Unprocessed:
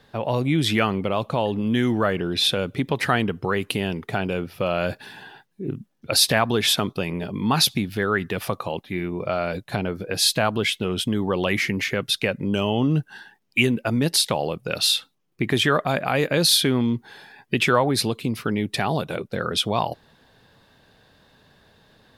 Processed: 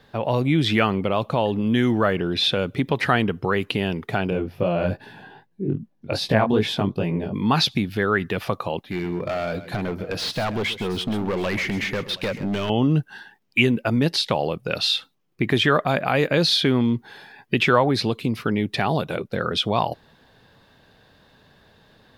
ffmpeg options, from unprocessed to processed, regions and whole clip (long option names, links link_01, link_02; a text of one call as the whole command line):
ffmpeg -i in.wav -filter_complex "[0:a]asettb=1/sr,asplit=3[link_01][link_02][link_03];[link_01]atrim=end=4.304[link_04];[link_02]atrim=start=4.3:end=7.34,asetpts=PTS-STARTPTS,afade=type=in:duration=0.004:curve=qsin,afade=type=out:start_time=3.036:duration=0.004:curve=qsin,tiltshelf=frequency=1200:gain=5.5,bandreject=frequency=1300:width=11,flanger=delay=17:depth=4.6:speed=2.5[link_05];[link_03]atrim=start=7.336[link_06];[link_04][link_05]acrossfade=duration=0.004:curve1=hsin:curve2=qsin[link_07];[link_07][link_06]acrossfade=duration=0.004:curve1=qsin:curve2=hsin,asettb=1/sr,asplit=3[link_08][link_09][link_10];[link_08]atrim=end=8.864[link_11];[link_09]atrim=start=8.86:end=12.7,asetpts=PTS-STARTPTS,afade=type=in:duration=0.004:curve=qsin,afade=type=out:start_time=3.836:duration=0.004:curve=qsin,asoftclip=type=hard:threshold=-22.5dB,aecho=1:1:132|721:0.2|0.106,atrim=end_sample=169344[link_12];[link_10]atrim=start=12.696[link_13];[link_11][link_12]acrossfade=duration=0.004:curve1=hsin:curve2=qsin[link_14];[link_14][link_13]acrossfade=duration=0.004:curve1=qsin:curve2=hsin,acrossover=split=5700[link_15][link_16];[link_16]acompressor=threshold=-43dB:ratio=4:attack=1:release=60[link_17];[link_15][link_17]amix=inputs=2:normalize=0,equalizer=frequency=9200:width_type=o:width=1.3:gain=-4.5,volume=1.5dB" out.wav